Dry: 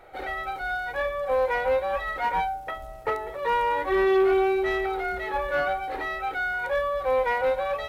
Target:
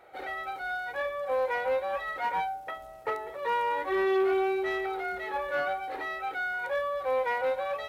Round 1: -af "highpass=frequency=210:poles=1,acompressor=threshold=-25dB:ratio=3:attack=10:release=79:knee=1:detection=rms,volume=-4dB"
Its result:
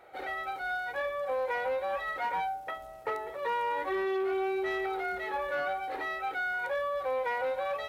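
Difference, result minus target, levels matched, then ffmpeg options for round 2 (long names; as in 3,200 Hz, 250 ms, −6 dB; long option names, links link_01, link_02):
downward compressor: peak gain reduction +6 dB
-af "highpass=frequency=210:poles=1,volume=-4dB"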